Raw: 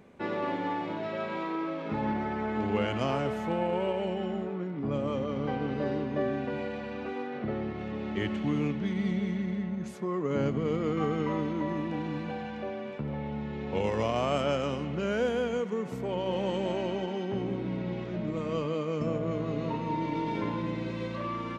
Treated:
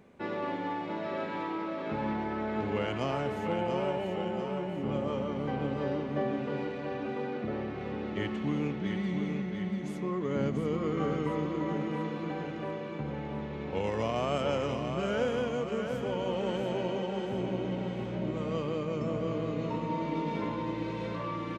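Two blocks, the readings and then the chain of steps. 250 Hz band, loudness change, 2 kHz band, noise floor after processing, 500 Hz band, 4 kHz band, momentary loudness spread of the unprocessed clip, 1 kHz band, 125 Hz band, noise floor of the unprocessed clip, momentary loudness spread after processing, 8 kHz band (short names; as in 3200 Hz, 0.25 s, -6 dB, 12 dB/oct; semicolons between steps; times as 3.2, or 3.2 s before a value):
-1.5 dB, -1.5 dB, -1.0 dB, -38 dBFS, -1.0 dB, -1.0 dB, 6 LU, -1.0 dB, -1.5 dB, -37 dBFS, 5 LU, n/a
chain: feedback echo 0.689 s, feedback 53%, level -6 dB; gain -2.5 dB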